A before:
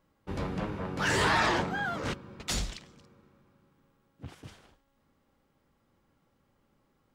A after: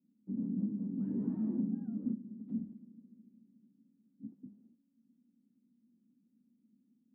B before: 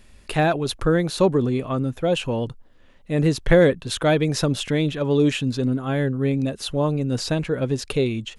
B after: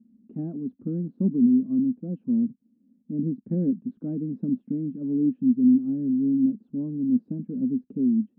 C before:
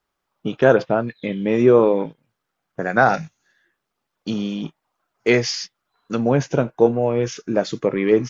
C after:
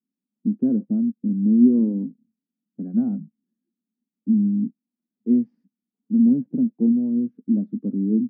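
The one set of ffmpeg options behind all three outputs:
-af "asuperpass=centerf=230:order=4:qfactor=3.6,volume=2.51"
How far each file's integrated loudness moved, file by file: -7.0 LU, -3.5 LU, -1.5 LU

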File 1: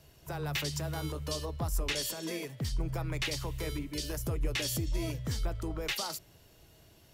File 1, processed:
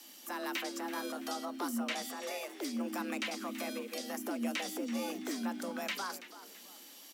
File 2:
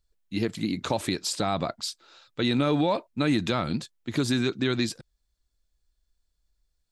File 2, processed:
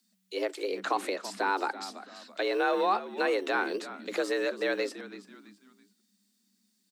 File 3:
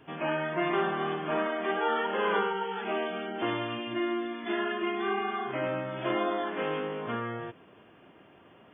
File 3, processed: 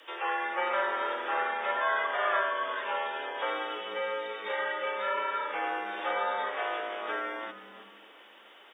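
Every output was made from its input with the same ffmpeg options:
-filter_complex "[0:a]tiltshelf=f=1400:g=-9,acrossover=split=150|1400[s0][s1][s2];[s0]acrusher=samples=16:mix=1:aa=0.000001[s3];[s1]crystalizer=i=5:c=0[s4];[s2]acompressor=threshold=0.00355:ratio=6[s5];[s3][s4][s5]amix=inputs=3:normalize=0,asplit=4[s6][s7][s8][s9];[s7]adelay=331,afreqshift=-110,volume=0.2[s10];[s8]adelay=662,afreqshift=-220,volume=0.0716[s11];[s9]adelay=993,afreqshift=-330,volume=0.026[s12];[s6][s10][s11][s12]amix=inputs=4:normalize=0,afreqshift=190,volume=1.5"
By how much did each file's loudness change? -3.0 LU, -3.0 LU, -0.5 LU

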